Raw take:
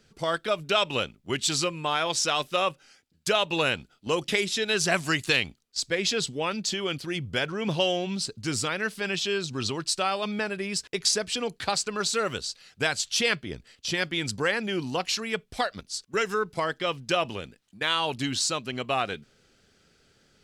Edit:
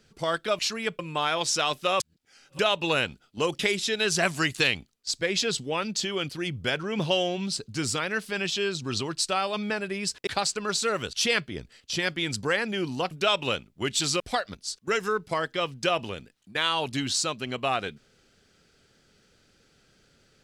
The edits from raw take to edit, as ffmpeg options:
-filter_complex "[0:a]asplit=9[s0][s1][s2][s3][s4][s5][s6][s7][s8];[s0]atrim=end=0.592[s9];[s1]atrim=start=15.058:end=15.462[s10];[s2]atrim=start=1.678:end=2.692[s11];[s3]atrim=start=2.688:end=3.282,asetpts=PTS-STARTPTS,areverse[s12];[s4]atrim=start=3.278:end=10.962[s13];[s5]atrim=start=11.578:end=12.442[s14];[s6]atrim=start=13.078:end=15.062[s15];[s7]atrim=start=0.588:end=1.682[s16];[s8]atrim=start=15.458[s17];[s9][s10]acrossfade=d=0.004:c1=hsin:c2=hsin[s18];[s18][s11]acrossfade=d=0.004:c1=hsin:c2=hsin[s19];[s19][s12]acrossfade=d=0.004:c1=hsin:c2=hsin[s20];[s20][s13]acrossfade=d=0.004:c1=hsin:c2=hsin[s21];[s21][s14]acrossfade=d=0.004:c1=hsin:c2=hsin[s22];[s22][s15]acrossfade=d=0.004:c1=hsin:c2=hsin[s23];[s23][s16]acrossfade=d=0.004:c1=hsin:c2=hsin[s24];[s24][s17]acrossfade=d=0.004:c1=hsin:c2=hsin"

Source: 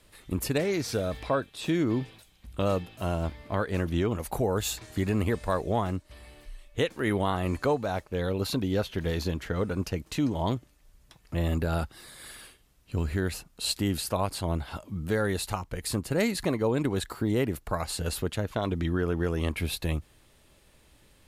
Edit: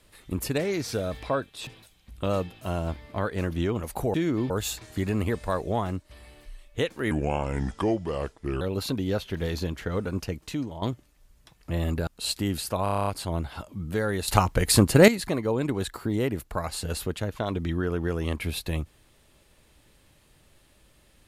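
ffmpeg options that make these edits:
-filter_complex "[0:a]asplit=18[s0][s1][s2][s3][s4][s5][s6][s7][s8][s9][s10][s11][s12][s13][s14][s15][s16][s17];[s0]atrim=end=1.672[s18];[s1]atrim=start=2.028:end=4.502[s19];[s2]atrim=start=1.668:end=2.032[s20];[s3]atrim=start=4.498:end=7.114[s21];[s4]atrim=start=7.11:end=8.25,asetpts=PTS-STARTPTS,asetrate=33516,aresample=44100[s22];[s5]atrim=start=8.246:end=10.46,asetpts=PTS-STARTPTS,afade=t=out:st=1.544:d=0.67:c=qsin:silence=0.266073[s23];[s6]atrim=start=10.46:end=11.712,asetpts=PTS-STARTPTS,afade=t=in:d=0.004:c=hsin:silence=0.266073[s24];[s7]atrim=start=13.468:end=14.262[s25];[s8]atrim=start=14.228:end=14.262[s26];[s9]atrim=start=14.228:end=14.262[s27];[s10]atrim=start=14.228:end=14.262[s28];[s11]atrim=start=14.228:end=14.262[s29];[s12]atrim=start=14.228:end=14.262[s30];[s13]atrim=start=14.228:end=14.262[s31];[s14]atrim=start=14.228:end=14.262[s32];[s15]atrim=start=14.228:end=15.442[s33];[s16]atrim=start=15.438:end=16.242,asetpts=PTS-STARTPTS,volume=3.76[s34];[s17]atrim=start=16.238[s35];[s18][s19]acrossfade=d=0.004:c1=hsin:c2=hsin[s36];[s36][s20]acrossfade=d=0.004:c1=hsin:c2=hsin[s37];[s37][s21]acrossfade=d=0.004:c1=hsin:c2=hsin[s38];[s38][s22]acrossfade=d=0.004:c1=hsin:c2=hsin[s39];[s23][s24]concat=n=2:v=0:a=1[s40];[s39][s40]acrossfade=d=0.004:c1=hsin:c2=hsin[s41];[s41][s25]acrossfade=d=0.004:c1=hsin:c2=hsin[s42];[s42][s26]acrossfade=d=0.004:c1=hsin:c2=hsin[s43];[s43][s27]acrossfade=d=0.004:c1=hsin:c2=hsin[s44];[s44][s28]acrossfade=d=0.004:c1=hsin:c2=hsin[s45];[s45][s29]acrossfade=d=0.004:c1=hsin:c2=hsin[s46];[s46][s30]acrossfade=d=0.004:c1=hsin:c2=hsin[s47];[s47][s31]acrossfade=d=0.004:c1=hsin:c2=hsin[s48];[s48][s32]acrossfade=d=0.004:c1=hsin:c2=hsin[s49];[s49][s33]acrossfade=d=0.004:c1=hsin:c2=hsin[s50];[s50][s34]acrossfade=d=0.004:c1=hsin:c2=hsin[s51];[s51][s35]acrossfade=d=0.004:c1=hsin:c2=hsin"

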